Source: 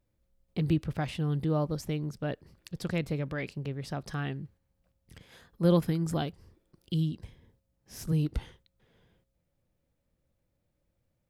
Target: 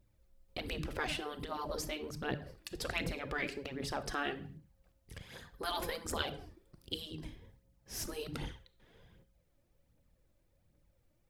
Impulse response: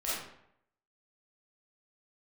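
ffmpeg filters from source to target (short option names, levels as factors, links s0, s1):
-filter_complex "[0:a]asplit=2[s0][s1];[1:a]atrim=start_sample=2205,afade=t=out:st=0.38:d=0.01,atrim=end_sample=17199,asetrate=57330,aresample=44100[s2];[s1][s2]afir=irnorm=-1:irlink=0,volume=0.188[s3];[s0][s3]amix=inputs=2:normalize=0,afftfilt=real='re*lt(hypot(re,im),0.1)':imag='im*lt(hypot(re,im),0.1)':win_size=1024:overlap=0.75,aphaser=in_gain=1:out_gain=1:delay=3.5:decay=0.47:speed=1.3:type=triangular,volume=1.19"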